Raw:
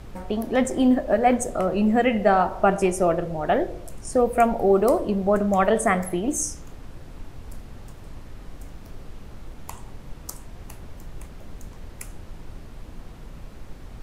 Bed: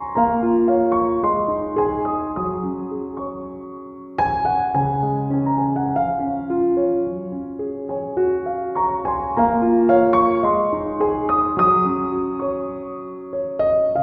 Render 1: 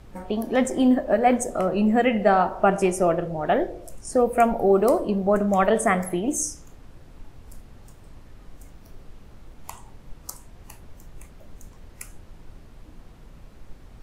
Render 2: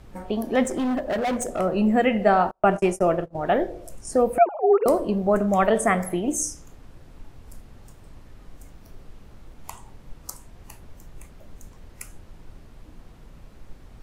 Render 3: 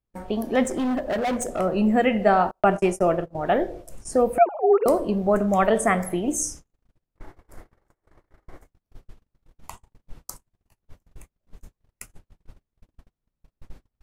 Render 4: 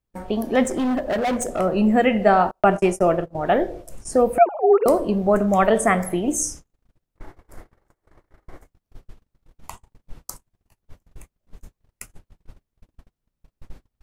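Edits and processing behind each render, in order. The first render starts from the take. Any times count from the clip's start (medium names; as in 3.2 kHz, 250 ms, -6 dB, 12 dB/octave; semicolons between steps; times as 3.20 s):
noise print and reduce 6 dB
0.65–1.60 s: hard clipper -22 dBFS; 2.51–3.35 s: gate -28 dBFS, range -39 dB; 4.38–4.86 s: formants replaced by sine waves
7.17–8.66 s: time-frequency box 290–2300 Hz +10 dB; gate -38 dBFS, range -39 dB
trim +2.5 dB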